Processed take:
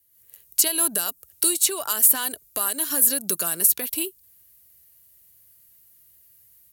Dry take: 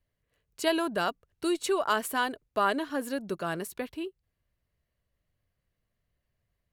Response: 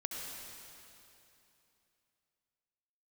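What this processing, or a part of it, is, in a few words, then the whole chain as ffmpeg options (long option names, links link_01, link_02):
FM broadcast chain: -filter_complex "[0:a]highpass=52,dynaudnorm=framelen=100:gausssize=3:maxgain=9.5dB,acrossover=split=120|5800[link_01][link_02][link_03];[link_01]acompressor=threshold=-56dB:ratio=4[link_04];[link_02]acompressor=threshold=-26dB:ratio=4[link_05];[link_03]acompressor=threshold=-43dB:ratio=4[link_06];[link_04][link_05][link_06]amix=inputs=3:normalize=0,aemphasis=mode=production:type=75fm,alimiter=limit=-15dB:level=0:latency=1:release=179,asoftclip=type=hard:threshold=-18.5dB,lowpass=frequency=15000:width=0.5412,lowpass=frequency=15000:width=1.3066,aemphasis=mode=production:type=75fm,volume=-2dB"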